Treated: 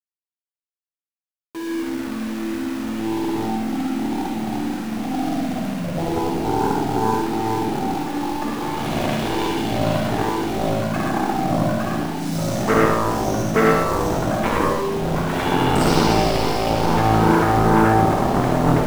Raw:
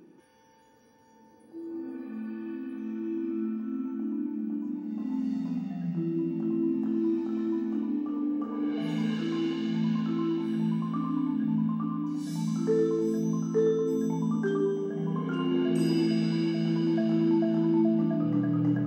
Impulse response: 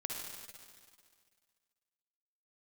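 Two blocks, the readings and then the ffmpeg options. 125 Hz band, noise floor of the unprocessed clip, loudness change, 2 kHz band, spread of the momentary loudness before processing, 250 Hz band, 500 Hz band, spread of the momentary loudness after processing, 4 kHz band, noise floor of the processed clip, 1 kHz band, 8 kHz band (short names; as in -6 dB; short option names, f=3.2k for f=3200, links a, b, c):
+10.0 dB, -58 dBFS, +8.5 dB, +19.0 dB, 9 LU, +4.5 dB, +9.5 dB, 9 LU, +15.5 dB, under -85 dBFS, +23.0 dB, n/a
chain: -filter_complex "[0:a]aeval=exprs='0.188*(cos(1*acos(clip(val(0)/0.188,-1,1)))-cos(1*PI/2))+0.0299*(cos(4*acos(clip(val(0)/0.188,-1,1)))-cos(4*PI/2))+0.0237*(cos(6*acos(clip(val(0)/0.188,-1,1)))-cos(6*PI/2))+0.0841*(cos(7*acos(clip(val(0)/0.188,-1,1)))-cos(7*PI/2))':c=same,aeval=exprs='val(0)*gte(abs(val(0)),0.0188)':c=same[a];[1:a]atrim=start_sample=2205,atrim=end_sample=6174[b];[a][b]afir=irnorm=-1:irlink=0,volume=8dB"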